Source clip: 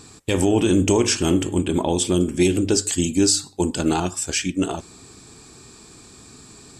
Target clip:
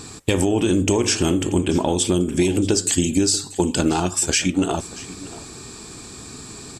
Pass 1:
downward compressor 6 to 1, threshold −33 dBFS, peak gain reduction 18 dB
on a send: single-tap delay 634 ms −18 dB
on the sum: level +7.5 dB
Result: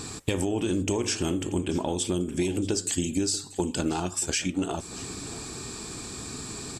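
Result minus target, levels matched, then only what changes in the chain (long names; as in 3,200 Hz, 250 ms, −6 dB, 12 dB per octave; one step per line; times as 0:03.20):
downward compressor: peak gain reduction +8.5 dB
change: downward compressor 6 to 1, threshold −23 dBFS, peak gain reduction 10 dB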